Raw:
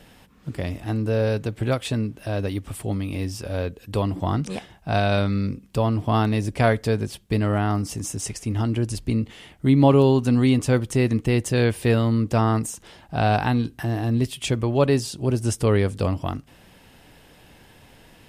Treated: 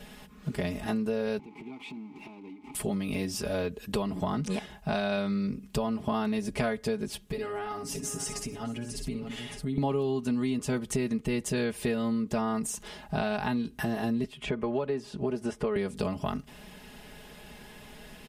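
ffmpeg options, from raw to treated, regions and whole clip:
ffmpeg -i in.wav -filter_complex "[0:a]asettb=1/sr,asplit=3[link_01][link_02][link_03];[link_01]atrim=end=1.394[link_04];[link_02]atrim=start=1.39:end=2.75,asetpts=PTS-STARTPTS,afade=type=in:duration=0.004:curve=qsin,afade=type=out:start_time=1.356:duration=0.004:curve=qsin,aeval=exprs='val(0)+0.5*0.0531*sgn(val(0))':channel_layout=same,asplit=3[link_05][link_06][link_07];[link_05]bandpass=frequency=300:width_type=q:width=8,volume=0dB[link_08];[link_06]bandpass=frequency=870:width_type=q:width=8,volume=-6dB[link_09];[link_07]bandpass=frequency=2240:width_type=q:width=8,volume=-9dB[link_10];[link_08][link_09][link_10]amix=inputs=3:normalize=0,acompressor=threshold=-41dB:ratio=6:attack=3.2:release=140:knee=1:detection=peak[link_11];[link_03]atrim=start=2.746[link_12];[link_04][link_11]acrossfade=duration=0.004:curve1=hsin:curve2=qsin[link_13];[link_13][link_12]acrossfade=duration=0.004:curve1=qsin:curve2=hsin,asettb=1/sr,asplit=3[link_14][link_15][link_16];[link_14]atrim=end=7.264[link_17];[link_15]atrim=start=7.26:end=9.78,asetpts=PTS-STARTPTS,afade=type=in:duration=0.004:curve=qsin,afade=type=out:start_time=2.516:duration=0.004:curve=qsin,aecho=1:1:7.2:0.83,atrim=end_sample=111132,aecho=1:1:61|621:0.376|0.158,atrim=end_sample=111132,acompressor=threshold=-35dB:ratio=3:attack=3.2:release=140:knee=1:detection=peak[link_18];[link_16]atrim=start=9.776[link_19];[link_17][link_18]acrossfade=duration=0.004:curve1=hsin:curve2=qsin[link_20];[link_20][link_19]acrossfade=duration=0.004:curve1=qsin:curve2=hsin,asettb=1/sr,asplit=3[link_21][link_22][link_23];[link_21]atrim=end=14.244[link_24];[link_22]atrim=start=14.24:end=15.76,asetpts=PTS-STARTPTS,afade=type=in:duration=0.004:curve=qsin,afade=type=out:start_time=1.516:duration=0.004:curve=qsin,highshelf=frequency=6200:gain=-10,acrossover=split=280|2500[link_25][link_26][link_27];[link_25]acompressor=threshold=-32dB:ratio=4[link_28];[link_26]acompressor=threshold=-22dB:ratio=4[link_29];[link_27]acompressor=threshold=-52dB:ratio=4[link_30];[link_28][link_29][link_30]amix=inputs=3:normalize=0[link_31];[link_23]atrim=start=15.756[link_32];[link_24][link_31]acrossfade=duration=0.004:curve1=hsin:curve2=qsin[link_33];[link_33][link_32]acrossfade=duration=0.004:curve1=qsin:curve2=hsin,aecho=1:1:4.8:0.91,acompressor=threshold=-27dB:ratio=6" out.wav

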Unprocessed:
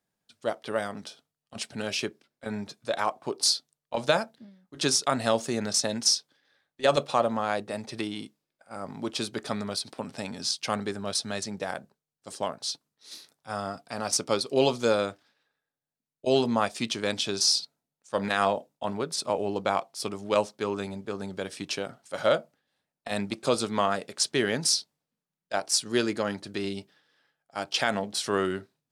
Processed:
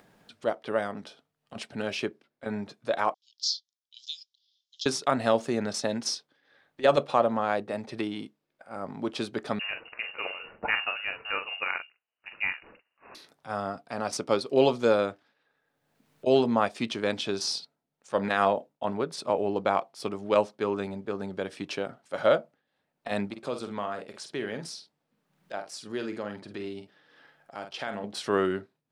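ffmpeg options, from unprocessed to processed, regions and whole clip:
ffmpeg -i in.wav -filter_complex "[0:a]asettb=1/sr,asplit=3[link_01][link_02][link_03];[link_01]atrim=end=3.144[link_04];[link_02]atrim=start=3.14:end=4.86,asetpts=PTS-STARTPTS,afade=type=in:duration=0.004:curve=qsin,afade=type=out:start_time=1.716:duration=0.004:curve=qsin,asuperpass=centerf=4800:order=12:qfactor=1.2,equalizer=frequency=5300:width_type=o:width=0.23:gain=6.5[link_05];[link_03]atrim=start=4.856[link_06];[link_04][link_05]acrossfade=duration=0.004:curve1=hsin:curve2=qsin[link_07];[link_07][link_06]acrossfade=duration=0.004:curve1=qsin:curve2=hsin,asettb=1/sr,asplit=3[link_08][link_09][link_10];[link_08]atrim=end=9.594[link_11];[link_09]atrim=start=9.59:end=13.15,asetpts=PTS-STARTPTS,afade=type=in:duration=0.004:curve=qsin,afade=type=out:start_time=3.556:duration=0.004:curve=qsin,adynamicequalizer=threshold=0.00398:dfrequency=2100:dqfactor=0.96:tfrequency=2100:tqfactor=0.96:attack=5:release=100:ratio=0.375:range=3.5:mode=boostabove:tftype=bell,asplit=2[link_12][link_13];[link_13]adelay=43,volume=-7dB[link_14];[link_12][link_14]amix=inputs=2:normalize=0,atrim=end_sample=156996,lowpass=frequency=2600:width_type=q:width=0.5098,lowpass=frequency=2600:width_type=q:width=0.6013,lowpass=frequency=2600:width_type=q:width=0.9,lowpass=frequency=2600:width_type=q:width=2.563,afreqshift=-3000[link_15];[link_10]atrim=start=13.146[link_16];[link_11][link_15]acrossfade=duration=0.004:curve1=hsin:curve2=qsin[link_17];[link_17][link_16]acrossfade=duration=0.004:curve1=qsin:curve2=hsin,asettb=1/sr,asplit=3[link_18][link_19][link_20];[link_18]atrim=end=23.284[link_21];[link_19]atrim=start=23.28:end=28.04,asetpts=PTS-STARTPTS,afade=type=in:duration=0.004:curve=qsin,afade=type=out:start_time=4.756:duration=0.004:curve=qsin,asplit=2[link_22][link_23];[link_23]adelay=48,volume=-9.5dB[link_24];[link_22][link_24]amix=inputs=2:normalize=0,atrim=end_sample=209916,acompressor=threshold=-45dB:ratio=1.5:attack=3.2:release=140:knee=1:detection=peak[link_25];[link_20]atrim=start=28.036[link_26];[link_21][link_25]acrossfade=duration=0.004:curve1=hsin:curve2=qsin[link_27];[link_27][link_26]acrossfade=duration=0.004:curve1=qsin:curve2=hsin,bass=frequency=250:gain=-3,treble=frequency=4000:gain=-11,acompressor=mode=upward:threshold=-43dB:ratio=2.5,equalizer=frequency=270:width=0.43:gain=2.5" out.wav

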